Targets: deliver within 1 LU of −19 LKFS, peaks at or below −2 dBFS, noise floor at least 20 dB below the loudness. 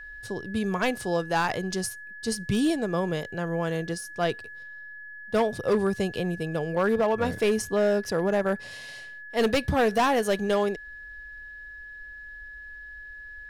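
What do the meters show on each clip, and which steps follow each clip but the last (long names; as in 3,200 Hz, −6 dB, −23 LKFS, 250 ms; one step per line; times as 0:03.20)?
share of clipped samples 1.2%; peaks flattened at −17.5 dBFS; interfering tone 1,700 Hz; level of the tone −40 dBFS; integrated loudness −26.5 LKFS; sample peak −17.5 dBFS; target loudness −19.0 LKFS
→ clipped peaks rebuilt −17.5 dBFS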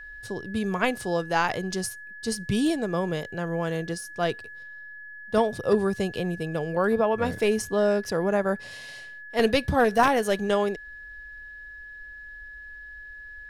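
share of clipped samples 0.0%; interfering tone 1,700 Hz; level of the tone −40 dBFS
→ notch filter 1,700 Hz, Q 30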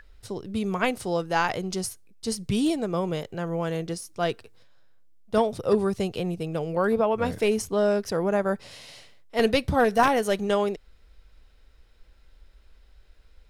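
interfering tone none found; integrated loudness −26.0 LKFS; sample peak −8.0 dBFS; target loudness −19.0 LKFS
→ level +7 dB
brickwall limiter −2 dBFS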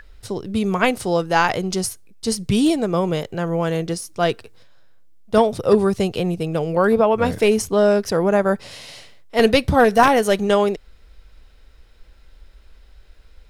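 integrated loudness −19.0 LKFS; sample peak −2.0 dBFS; background noise floor −49 dBFS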